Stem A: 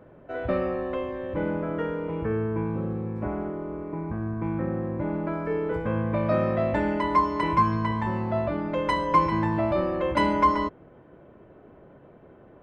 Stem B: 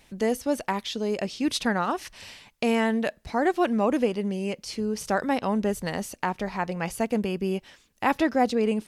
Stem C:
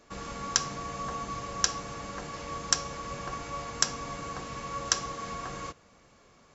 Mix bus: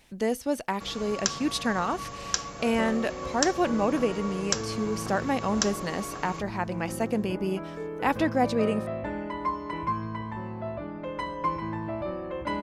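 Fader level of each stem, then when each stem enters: -8.0 dB, -2.0 dB, -1.5 dB; 2.30 s, 0.00 s, 0.70 s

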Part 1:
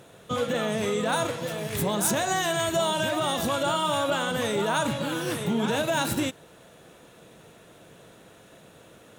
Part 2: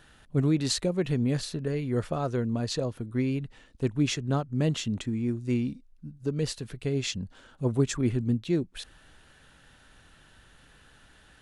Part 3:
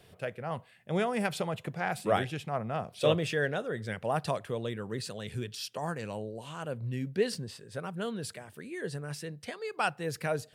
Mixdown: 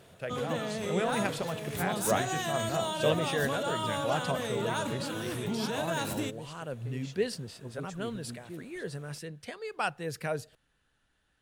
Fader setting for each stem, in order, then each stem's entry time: -7.5 dB, -17.5 dB, -1.5 dB; 0.00 s, 0.00 s, 0.00 s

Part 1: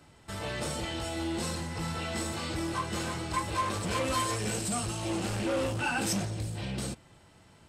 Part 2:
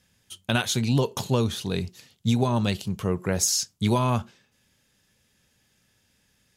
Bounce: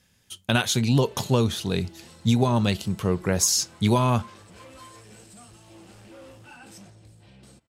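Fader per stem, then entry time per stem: -16.5 dB, +2.0 dB; 0.65 s, 0.00 s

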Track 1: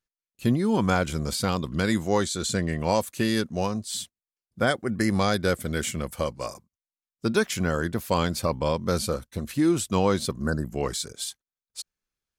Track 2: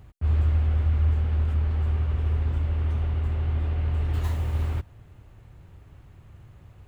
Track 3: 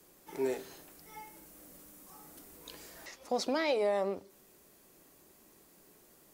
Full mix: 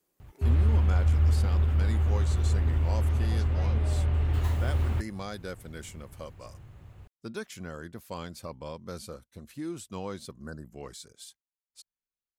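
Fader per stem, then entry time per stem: -14.5 dB, -0.5 dB, -16.0 dB; 0.00 s, 0.20 s, 0.00 s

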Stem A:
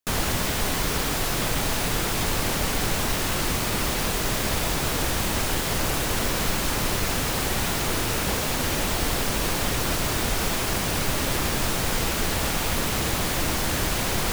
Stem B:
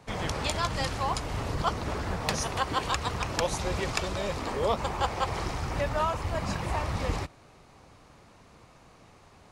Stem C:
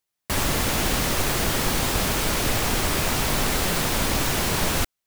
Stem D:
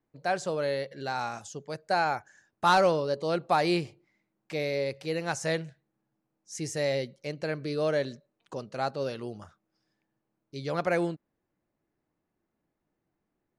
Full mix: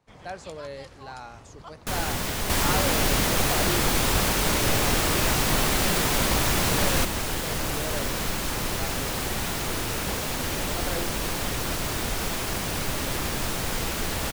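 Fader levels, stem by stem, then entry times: -3.5 dB, -16.5 dB, -1.0 dB, -8.5 dB; 1.80 s, 0.00 s, 2.20 s, 0.00 s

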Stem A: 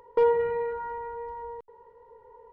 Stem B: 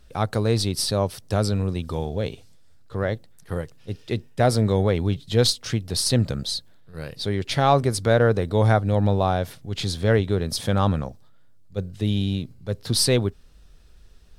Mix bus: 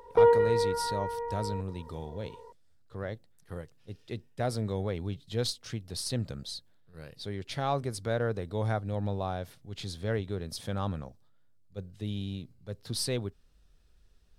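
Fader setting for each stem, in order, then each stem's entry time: +1.5 dB, -12.0 dB; 0.00 s, 0.00 s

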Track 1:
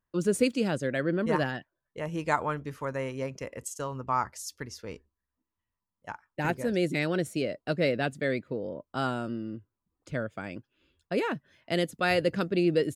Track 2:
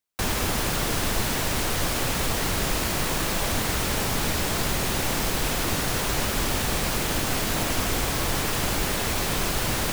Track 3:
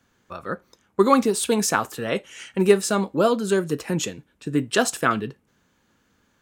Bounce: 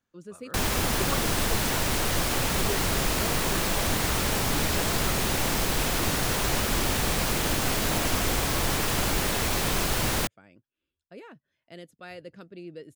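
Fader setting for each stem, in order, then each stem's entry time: -17.0 dB, -0.5 dB, -18.0 dB; 0.00 s, 0.35 s, 0.00 s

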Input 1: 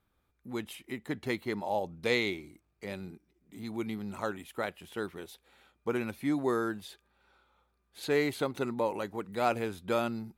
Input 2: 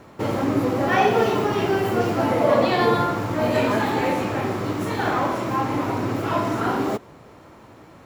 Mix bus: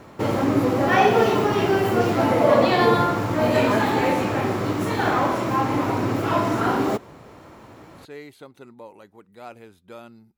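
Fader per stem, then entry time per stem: -11.5 dB, +1.5 dB; 0.00 s, 0.00 s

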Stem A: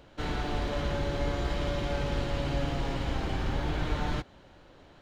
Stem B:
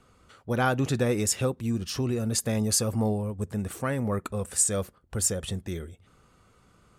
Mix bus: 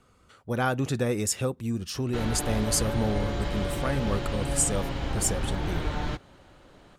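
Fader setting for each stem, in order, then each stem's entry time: +0.5 dB, -1.5 dB; 1.95 s, 0.00 s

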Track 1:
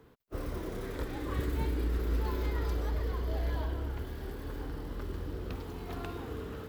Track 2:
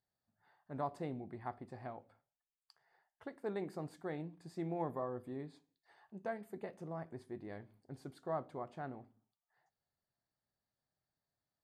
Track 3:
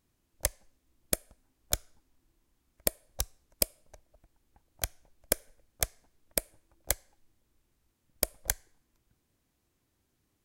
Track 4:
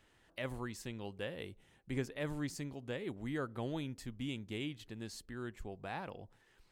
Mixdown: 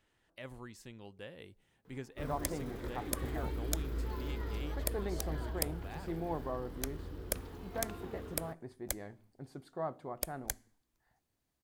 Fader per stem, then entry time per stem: -6.5 dB, +1.0 dB, -8.0 dB, -6.5 dB; 1.85 s, 1.50 s, 2.00 s, 0.00 s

